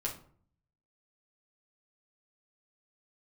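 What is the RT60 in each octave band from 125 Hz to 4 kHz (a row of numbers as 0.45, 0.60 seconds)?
0.90, 0.70, 0.55, 0.50, 0.35, 0.30 seconds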